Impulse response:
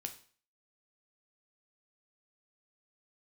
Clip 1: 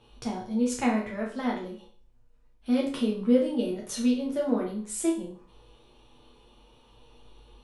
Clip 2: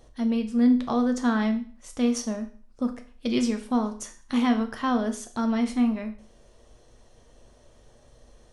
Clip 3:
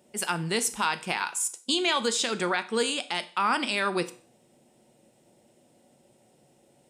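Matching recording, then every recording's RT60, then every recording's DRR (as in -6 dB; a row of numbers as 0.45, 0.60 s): 2; 0.45, 0.45, 0.45 s; -3.5, 5.5, 10.5 dB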